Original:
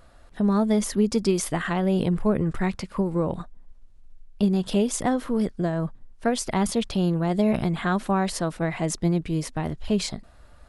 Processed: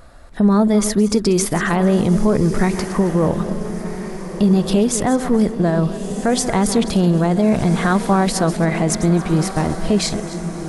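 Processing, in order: regenerating reverse delay 0.136 s, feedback 45%, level -13 dB; on a send: diffused feedback echo 1.359 s, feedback 43%, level -12 dB; on the sum: limiter -15.5 dBFS, peak gain reduction 6.5 dB; bell 3000 Hz -4.5 dB 0.47 oct; gain +9 dB

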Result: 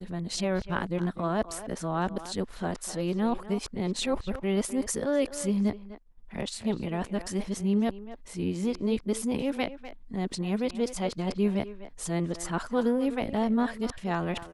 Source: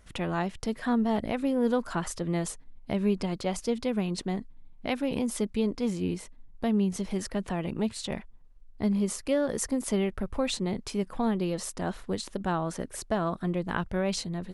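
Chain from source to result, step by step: whole clip reversed; expander -46 dBFS; speakerphone echo 0.25 s, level -12 dB

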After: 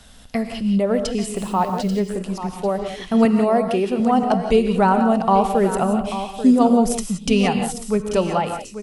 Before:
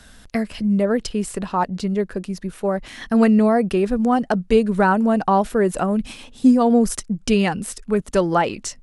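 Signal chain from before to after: ending faded out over 0.72 s; 3.25–4 HPF 190 Hz; echo 0.838 s -11.5 dB; 1.36–2 requantised 8-bit, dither none; thirty-one-band EQ 315 Hz -5 dB, 800 Hz +3 dB, 1600 Hz -8 dB, 3150 Hz +3 dB; non-linear reverb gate 0.2 s rising, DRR 6.5 dB

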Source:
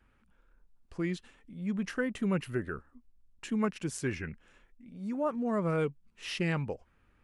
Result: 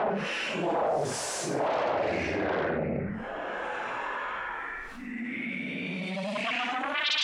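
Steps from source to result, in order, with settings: Paulstretch 4.6×, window 0.10 s, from 3.68; sine folder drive 18 dB, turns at -18.5 dBFS; band-pass sweep 630 Hz -> 3400 Hz, 3.24–7.04; fast leveller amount 70%; gain -1 dB

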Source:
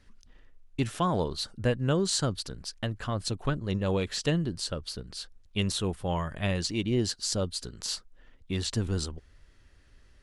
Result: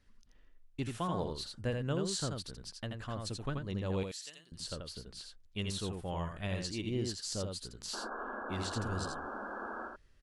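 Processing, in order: 4.03–4.52 differentiator; 7.93–9.88 painted sound noise 200–1700 Hz -34 dBFS; echo 83 ms -4.5 dB; gain -9 dB

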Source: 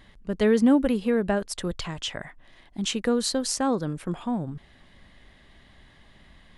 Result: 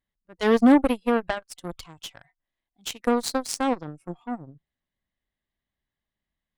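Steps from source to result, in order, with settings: spectral noise reduction 18 dB; added harmonics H 7 -18 dB, 8 -37 dB, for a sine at -9.5 dBFS; gain +3 dB

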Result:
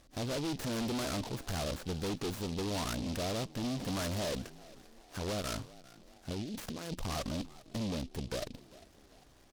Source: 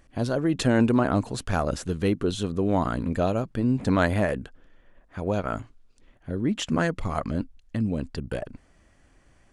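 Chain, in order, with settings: low shelf 330 Hz -6.5 dB; 6.32–7 negative-ratio compressor -39 dBFS, ratio -1; tube stage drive 37 dB, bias 0.55; LPF 2300 Hz 12 dB/oct; spectral gate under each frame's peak -30 dB strong; frequency-shifting echo 0.398 s, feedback 46%, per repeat +66 Hz, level -20 dB; noise-modulated delay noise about 3700 Hz, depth 0.12 ms; gain +4 dB

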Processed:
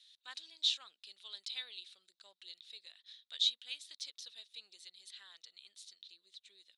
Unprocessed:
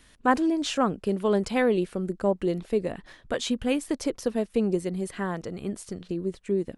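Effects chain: ladder band-pass 4000 Hz, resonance 80%; gain +3.5 dB

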